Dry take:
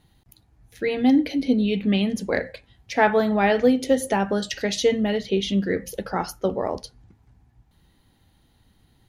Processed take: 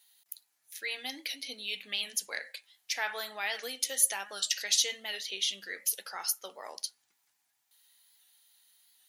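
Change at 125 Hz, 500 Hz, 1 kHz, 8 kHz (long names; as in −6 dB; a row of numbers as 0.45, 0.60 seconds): below −35 dB, −23.5 dB, −16.5 dB, +7.0 dB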